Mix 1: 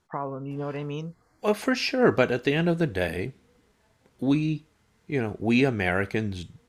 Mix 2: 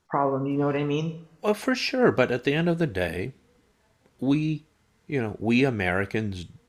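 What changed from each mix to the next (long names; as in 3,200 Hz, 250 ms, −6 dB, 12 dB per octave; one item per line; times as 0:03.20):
first voice +4.0 dB
reverb: on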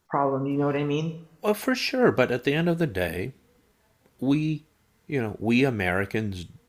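master: remove low-pass filter 9,300 Hz 12 dB per octave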